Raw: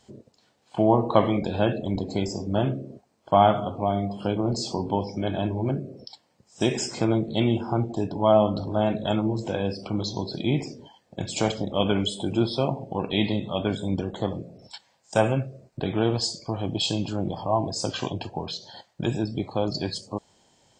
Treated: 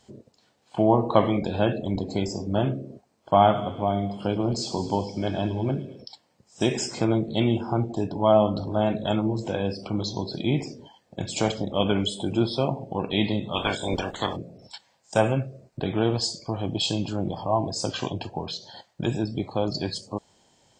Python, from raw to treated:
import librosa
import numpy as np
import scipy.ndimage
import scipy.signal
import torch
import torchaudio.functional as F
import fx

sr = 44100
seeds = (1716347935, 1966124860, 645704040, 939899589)

y = fx.echo_wet_highpass(x, sr, ms=108, feedback_pct=64, hz=2300.0, wet_db=-10.5, at=(3.51, 6.01), fade=0.02)
y = fx.spec_clip(y, sr, under_db=21, at=(13.53, 14.35), fade=0.02)